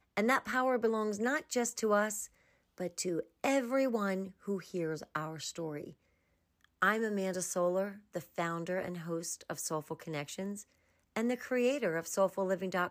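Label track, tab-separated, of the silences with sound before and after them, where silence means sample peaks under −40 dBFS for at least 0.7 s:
5.900000	6.820000	silence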